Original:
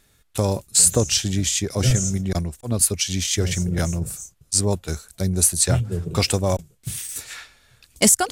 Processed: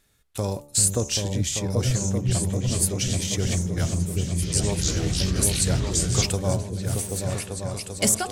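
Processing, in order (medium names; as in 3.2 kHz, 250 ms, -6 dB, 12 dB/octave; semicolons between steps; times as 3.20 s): delay with an opening low-pass 391 ms, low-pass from 200 Hz, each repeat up 2 oct, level 0 dB; 4.21–6.26 s: ever faster or slower copies 209 ms, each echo -4 st, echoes 3; de-hum 72.54 Hz, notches 18; trim -5.5 dB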